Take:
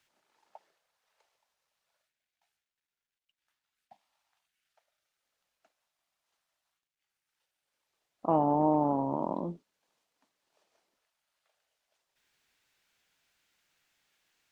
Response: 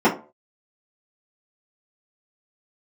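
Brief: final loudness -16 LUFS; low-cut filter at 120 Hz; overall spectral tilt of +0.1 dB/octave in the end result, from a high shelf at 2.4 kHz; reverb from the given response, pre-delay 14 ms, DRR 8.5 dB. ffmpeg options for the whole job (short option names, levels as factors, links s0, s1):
-filter_complex "[0:a]highpass=120,highshelf=f=2400:g=-8.5,asplit=2[s0][s1];[1:a]atrim=start_sample=2205,adelay=14[s2];[s1][s2]afir=irnorm=-1:irlink=0,volume=0.0335[s3];[s0][s3]amix=inputs=2:normalize=0,volume=3.98"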